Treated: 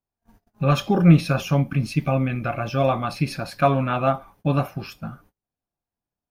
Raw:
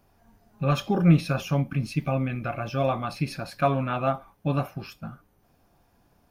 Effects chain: gate -56 dBFS, range -32 dB; gain +4.5 dB

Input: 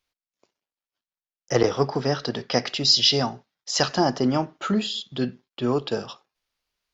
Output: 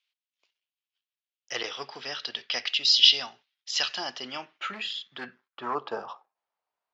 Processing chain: 4.73–5.75 overloaded stage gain 21.5 dB; band-pass sweep 3000 Hz -> 810 Hz, 4.3–6.31; gain +5.5 dB

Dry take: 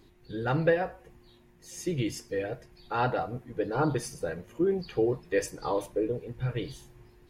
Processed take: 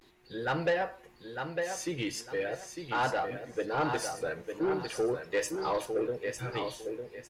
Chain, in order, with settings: vibrato 0.4 Hz 50 cents; feedback echo 0.903 s, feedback 25%, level -7.5 dB; overdrive pedal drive 16 dB, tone 7800 Hz, clips at -12.5 dBFS; gain -7 dB

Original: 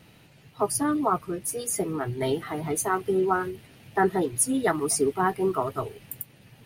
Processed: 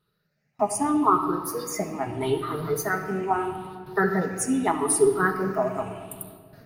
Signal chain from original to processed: moving spectral ripple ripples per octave 0.62, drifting +0.79 Hz, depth 15 dB; gate with hold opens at -38 dBFS; bell 1300 Hz +5 dB 1.3 oct; notch 3200 Hz, Q 14; shoebox room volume 3600 m³, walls mixed, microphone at 1.3 m; gain -4 dB

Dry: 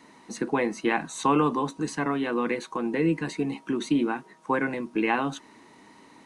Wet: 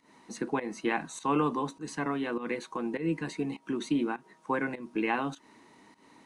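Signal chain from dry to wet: pump 101 bpm, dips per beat 1, -15 dB, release 0.188 s; gain -4.5 dB

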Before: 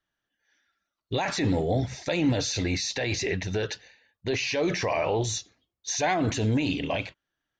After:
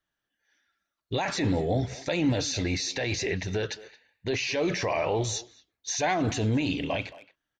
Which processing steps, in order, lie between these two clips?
speakerphone echo 0.22 s, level -17 dB; gain -1 dB

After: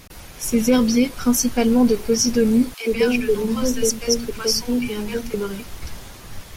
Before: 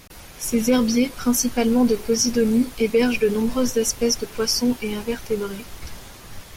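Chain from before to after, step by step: low shelf 190 Hz +3 dB; 2.74–5.34 three bands offset in time highs, mids, lows 60/150 ms, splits 210/750 Hz; gain +1 dB

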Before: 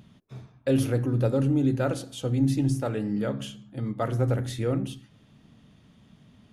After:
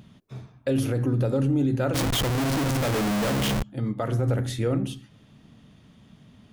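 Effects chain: 1.94–3.63 Schmitt trigger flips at -42.5 dBFS; limiter -19 dBFS, peak gain reduction 6 dB; gain +3 dB

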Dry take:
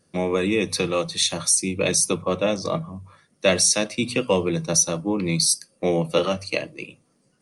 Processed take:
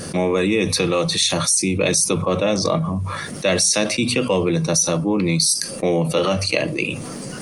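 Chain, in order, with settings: fast leveller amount 70%; gain -1.5 dB

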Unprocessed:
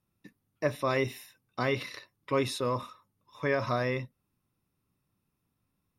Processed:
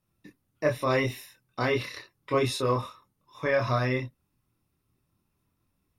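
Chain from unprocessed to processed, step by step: chorus voices 6, 0.77 Hz, delay 25 ms, depth 1.9 ms; gain +6 dB

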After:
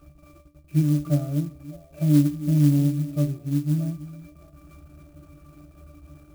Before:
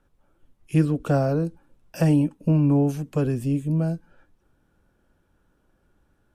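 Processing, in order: zero-crossing step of -34.5 dBFS; bell 2800 Hz +4 dB 0.41 oct; octave resonator D, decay 0.22 s; delay with a stepping band-pass 0.305 s, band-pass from 220 Hz, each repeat 1.4 oct, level -11.5 dB; clock jitter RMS 0.048 ms; gain +4.5 dB

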